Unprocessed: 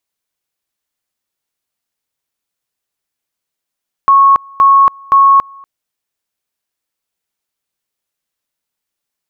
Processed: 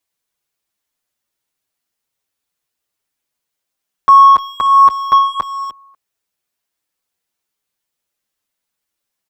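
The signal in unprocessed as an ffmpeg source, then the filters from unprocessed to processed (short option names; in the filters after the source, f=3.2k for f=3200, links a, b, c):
-f lavfi -i "aevalsrc='pow(10,(-3.5-28.5*gte(mod(t,0.52),0.28))/20)*sin(2*PI*1100*t)':d=1.56:s=44100"
-filter_complex "[0:a]asplit=2[a][b];[b]asoftclip=type=tanh:threshold=-13dB,volume=-4dB[c];[a][c]amix=inputs=2:normalize=0,asplit=2[d][e];[e]adelay=300,highpass=300,lowpass=3.4k,asoftclip=type=hard:threshold=-10.5dB,volume=-12dB[f];[d][f]amix=inputs=2:normalize=0,asplit=2[g][h];[h]adelay=7.3,afreqshift=-1.3[i];[g][i]amix=inputs=2:normalize=1"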